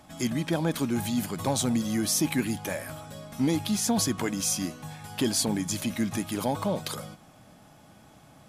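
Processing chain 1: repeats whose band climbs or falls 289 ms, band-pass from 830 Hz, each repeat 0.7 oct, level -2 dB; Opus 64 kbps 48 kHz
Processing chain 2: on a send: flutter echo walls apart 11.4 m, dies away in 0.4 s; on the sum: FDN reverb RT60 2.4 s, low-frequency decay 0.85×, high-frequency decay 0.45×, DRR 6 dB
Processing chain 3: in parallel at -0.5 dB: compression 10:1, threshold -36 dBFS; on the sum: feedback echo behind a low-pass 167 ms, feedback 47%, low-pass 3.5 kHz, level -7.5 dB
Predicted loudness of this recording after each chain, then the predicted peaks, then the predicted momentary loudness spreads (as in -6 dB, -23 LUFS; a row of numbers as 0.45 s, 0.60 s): -28.0 LUFS, -26.5 LUFS, -26.0 LUFS; -13.5 dBFS, -11.0 dBFS, -12.0 dBFS; 12 LU, 12 LU, 10 LU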